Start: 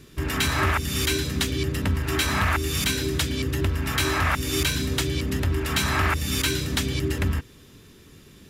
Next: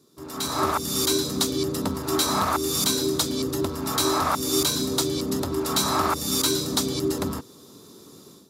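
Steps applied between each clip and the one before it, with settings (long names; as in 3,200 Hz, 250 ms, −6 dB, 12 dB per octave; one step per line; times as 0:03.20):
high-pass filter 230 Hz 12 dB per octave
flat-topped bell 2,200 Hz −15.5 dB 1.2 octaves
automatic gain control gain up to 14 dB
level −7.5 dB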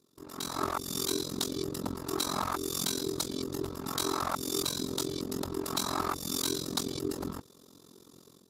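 amplitude modulation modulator 44 Hz, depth 90%
level −5 dB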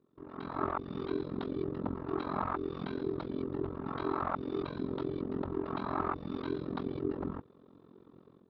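Gaussian smoothing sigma 3.9 samples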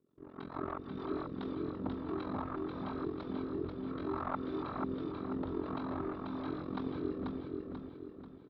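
rotating-speaker cabinet horn 6.7 Hz, later 0.85 Hz, at 0:00.87
on a send: repeating echo 488 ms, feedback 44%, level −3.5 dB
on the sum: level −2.5 dB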